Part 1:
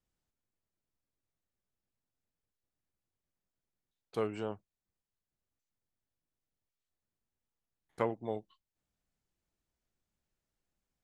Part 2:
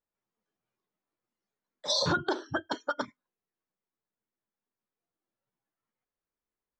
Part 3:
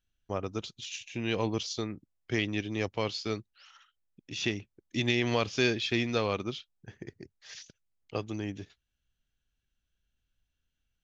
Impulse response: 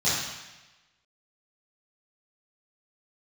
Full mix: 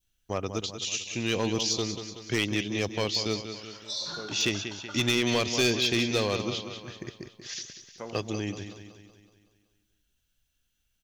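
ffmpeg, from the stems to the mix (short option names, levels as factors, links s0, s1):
-filter_complex "[0:a]volume=0.376,asplit=2[s0][s1];[s1]volume=0.0794[s2];[1:a]tiltshelf=f=940:g=-9,adelay=2000,volume=0.178,asplit=2[s3][s4];[s4]volume=0.188[s5];[2:a]highshelf=f=3800:g=11.5,volume=1.33,asplit=2[s6][s7];[s7]volume=0.316[s8];[3:a]atrim=start_sample=2205[s9];[s2][s5]amix=inputs=2:normalize=0[s10];[s10][s9]afir=irnorm=-1:irlink=0[s11];[s8]aecho=0:1:188|376|564|752|940|1128|1316|1504:1|0.52|0.27|0.141|0.0731|0.038|0.0198|0.0103[s12];[s0][s3][s6][s11][s12]amix=inputs=5:normalize=0,adynamicequalizer=threshold=0.00708:dfrequency=1600:dqfactor=1.3:tfrequency=1600:tqfactor=1.3:attack=5:release=100:ratio=0.375:range=3:mode=cutabove:tftype=bell,asoftclip=type=hard:threshold=0.126"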